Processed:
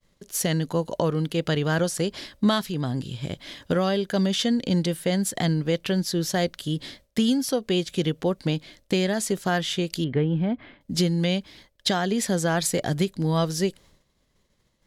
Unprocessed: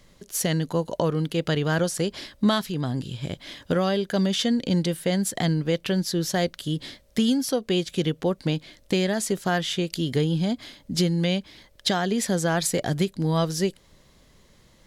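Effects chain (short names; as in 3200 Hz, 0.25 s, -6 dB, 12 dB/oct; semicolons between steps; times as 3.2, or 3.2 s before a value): 10.04–10.81 LPF 2400 Hz 24 dB/oct; expander -46 dBFS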